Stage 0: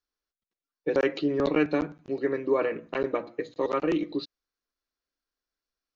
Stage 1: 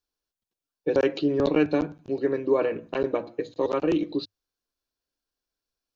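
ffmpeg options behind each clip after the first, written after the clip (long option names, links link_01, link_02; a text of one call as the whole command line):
ffmpeg -i in.wav -af "equalizer=frequency=100:width_type=o:width=0.33:gain=9,equalizer=frequency=1250:width_type=o:width=0.33:gain=-6,equalizer=frequency=2000:width_type=o:width=0.33:gain=-9,volume=2.5dB" out.wav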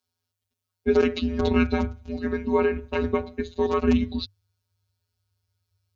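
ffmpeg -i in.wav -af "afftfilt=real='hypot(re,im)*cos(PI*b)':imag='0':win_size=1024:overlap=0.75,asubboost=boost=4.5:cutoff=140,afreqshift=-100,volume=7.5dB" out.wav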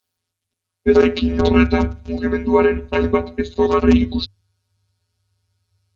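ffmpeg -i in.wav -af "volume=7.5dB" -ar 48000 -c:a libopus -b:a 20k out.opus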